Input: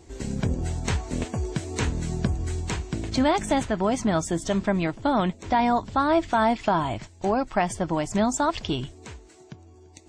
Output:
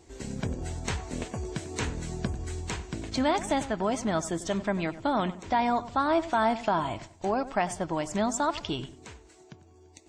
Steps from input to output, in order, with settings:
low-shelf EQ 250 Hz −5 dB
on a send: feedback echo with a low-pass in the loop 95 ms, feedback 35%, low-pass 1,900 Hz, level −14.5 dB
on the sum: level −3 dB

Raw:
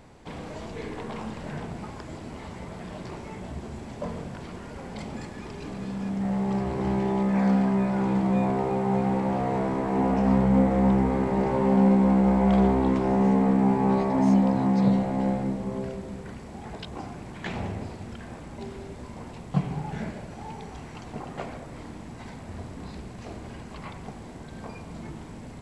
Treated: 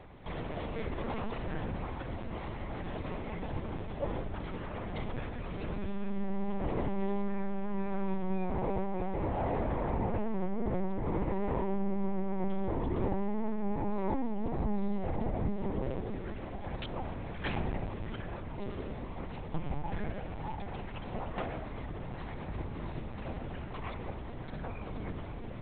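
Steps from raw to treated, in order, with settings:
brickwall limiter −19 dBFS, peak gain reduction 8.5 dB
downward compressor, threshold −28 dBFS, peak gain reduction 6 dB
on a send: tape delay 628 ms, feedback 58%, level −13 dB, low-pass 2,300 Hz
on the sum: linear-prediction vocoder at 8 kHz pitch kept

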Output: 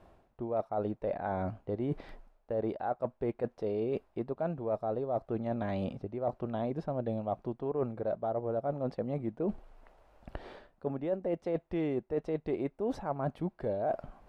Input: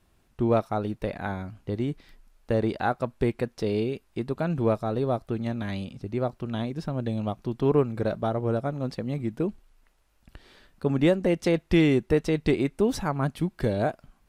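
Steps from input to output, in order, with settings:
low-pass filter 1,800 Hz 6 dB per octave
parametric band 650 Hz +12.5 dB 1.5 octaves
reversed playback
downward compressor 8 to 1, threshold −35 dBFS, peak gain reduction 25.5 dB
reversed playback
level +4 dB

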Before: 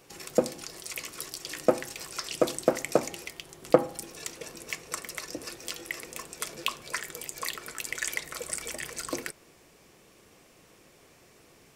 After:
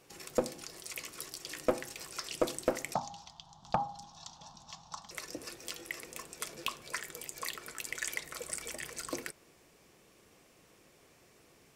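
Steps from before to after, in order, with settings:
0:02.94–0:05.11: drawn EQ curve 200 Hz 0 dB, 440 Hz −29 dB, 830 Hz +11 dB, 2,200 Hz −23 dB, 3,500 Hz +1 dB, 6,500 Hz −4 dB, 10,000 Hz −27 dB
asymmetric clip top −17 dBFS
level −5 dB

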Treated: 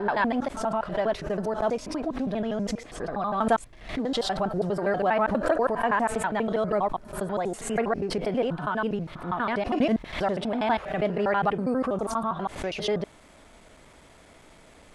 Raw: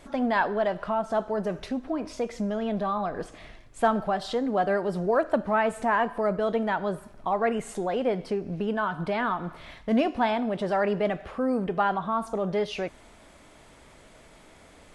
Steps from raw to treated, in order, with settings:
slices reordered back to front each 81 ms, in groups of 7
background raised ahead of every attack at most 110 dB per second

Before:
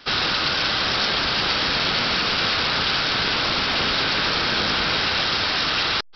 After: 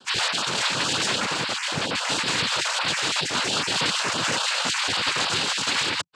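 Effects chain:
time-frequency cells dropped at random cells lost 39%
0:01.25–0:02.08: high-shelf EQ 3,900 Hz −7.5 dB
cochlear-implant simulation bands 8

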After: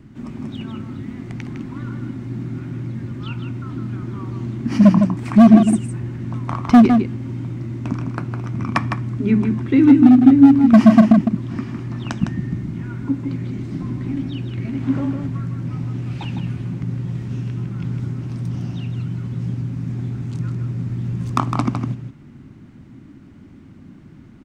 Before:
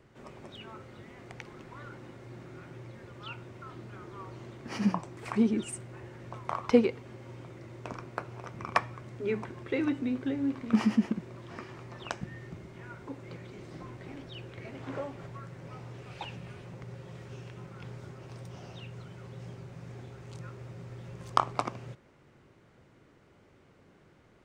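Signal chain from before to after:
low shelf with overshoot 350 Hz +10 dB, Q 3
gain into a clipping stage and back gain 11.5 dB
slap from a distant wall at 27 metres, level −6 dB
level +6.5 dB

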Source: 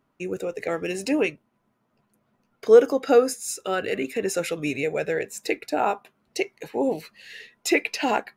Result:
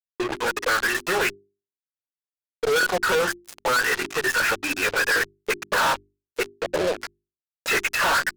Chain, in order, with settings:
phase-vocoder pitch shift with formants kept −7 semitones
envelope filter 370–1,500 Hz, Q 6.3, up, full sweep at −26 dBFS
fuzz pedal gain 57 dB, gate −54 dBFS
mains-hum notches 50/100/150/200/250/300/350/400 Hz
level −5.5 dB

